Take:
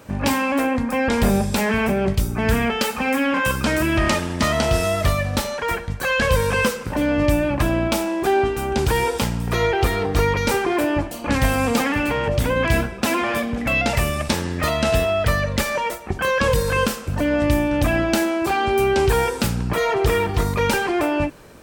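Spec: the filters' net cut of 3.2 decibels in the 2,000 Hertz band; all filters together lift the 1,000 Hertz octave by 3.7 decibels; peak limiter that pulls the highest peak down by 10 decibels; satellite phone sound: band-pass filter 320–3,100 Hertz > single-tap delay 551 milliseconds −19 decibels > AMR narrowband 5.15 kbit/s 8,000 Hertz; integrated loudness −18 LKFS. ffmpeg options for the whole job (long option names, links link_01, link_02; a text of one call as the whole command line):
ffmpeg -i in.wav -af "equalizer=frequency=1000:width_type=o:gain=6,equalizer=frequency=2000:width_type=o:gain=-5.5,alimiter=limit=-15dB:level=0:latency=1,highpass=320,lowpass=3100,aecho=1:1:551:0.112,volume=9dB" -ar 8000 -c:a libopencore_amrnb -b:a 5150 out.amr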